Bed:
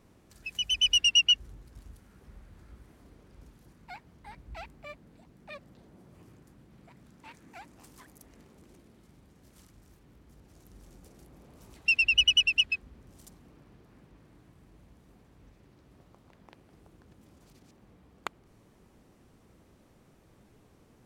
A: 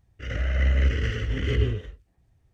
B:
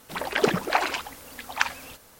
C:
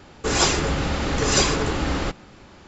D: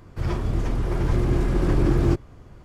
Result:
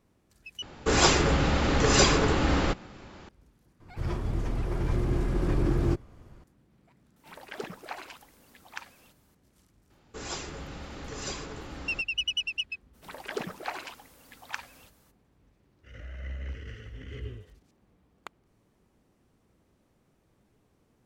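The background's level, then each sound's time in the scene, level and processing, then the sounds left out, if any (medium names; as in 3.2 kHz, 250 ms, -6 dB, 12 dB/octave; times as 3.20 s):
bed -7.5 dB
0.62 s: replace with C -0.5 dB + treble shelf 6 kHz -6.5 dB
3.80 s: add D -6 dB
7.16 s: add B -16.5 dB
9.90 s: add C -17.5 dB
12.93 s: add B -12.5 dB, fades 0.02 s
15.64 s: add A -16 dB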